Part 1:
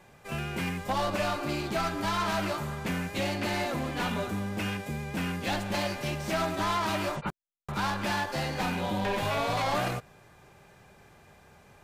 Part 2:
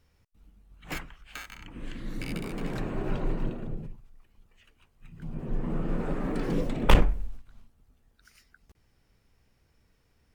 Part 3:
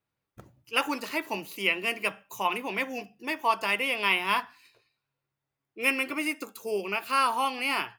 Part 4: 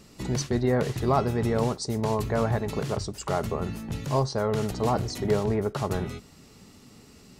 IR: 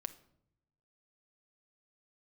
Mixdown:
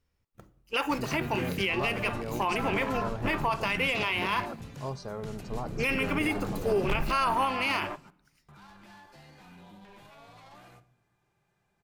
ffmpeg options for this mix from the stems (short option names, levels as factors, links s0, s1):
-filter_complex "[0:a]equalizer=f=530:t=o:w=0.26:g=-6,alimiter=level_in=1.06:limit=0.0631:level=0:latency=1:release=17,volume=0.944,adelay=800,volume=1.12,asplit=2[s0][s1];[s1]volume=0.119[s2];[1:a]volume=0.316[s3];[2:a]agate=range=0.501:threshold=0.00316:ratio=16:detection=peak,volume=1.41,asplit=3[s4][s5][s6];[s5]volume=0.501[s7];[3:a]adelay=700,volume=0.266[s8];[s6]apad=whole_len=557155[s9];[s0][s9]sidechaingate=range=0.0224:threshold=0.0112:ratio=16:detection=peak[s10];[s10][s4]amix=inputs=2:normalize=0,afwtdn=0.0251,alimiter=limit=0.133:level=0:latency=1:release=402,volume=1[s11];[4:a]atrim=start_sample=2205[s12];[s2][s7]amix=inputs=2:normalize=0[s13];[s13][s12]afir=irnorm=-1:irlink=0[s14];[s3][s8][s11][s14]amix=inputs=4:normalize=0,alimiter=limit=0.126:level=0:latency=1:release=18"